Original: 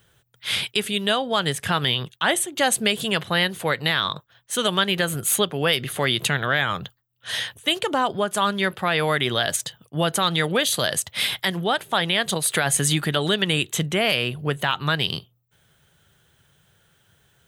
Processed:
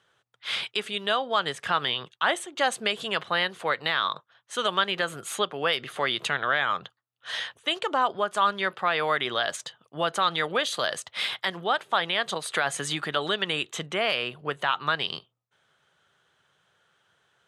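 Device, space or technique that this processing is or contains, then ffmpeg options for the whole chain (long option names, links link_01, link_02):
filter by subtraction: -filter_complex "[0:a]asplit=2[link_01][link_02];[link_02]lowpass=650,volume=-1[link_03];[link_01][link_03]amix=inputs=2:normalize=0,lowpass=6100,equalizer=frequency=1200:width_type=o:width=0.56:gain=5,volume=-5.5dB"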